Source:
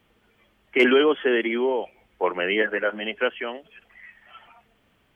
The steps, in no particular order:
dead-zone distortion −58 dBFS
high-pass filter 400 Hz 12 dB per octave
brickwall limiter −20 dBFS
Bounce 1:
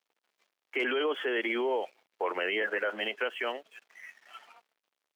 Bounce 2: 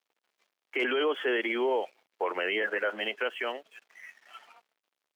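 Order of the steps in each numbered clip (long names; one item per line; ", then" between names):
dead-zone distortion, then brickwall limiter, then high-pass filter
dead-zone distortion, then high-pass filter, then brickwall limiter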